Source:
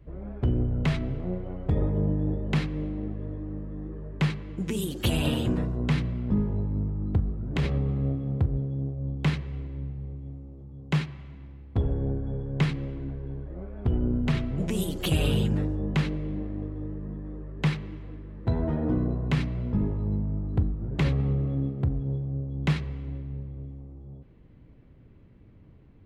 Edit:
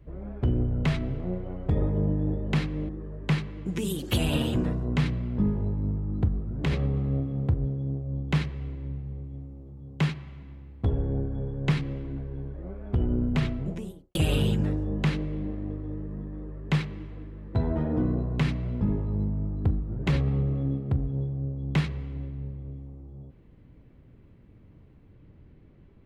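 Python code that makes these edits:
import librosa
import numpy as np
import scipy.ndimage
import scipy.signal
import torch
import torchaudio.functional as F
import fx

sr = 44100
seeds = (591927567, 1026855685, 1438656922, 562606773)

y = fx.studio_fade_out(x, sr, start_s=14.32, length_s=0.75)
y = fx.edit(y, sr, fx.cut(start_s=2.89, length_s=0.92), tone=tone)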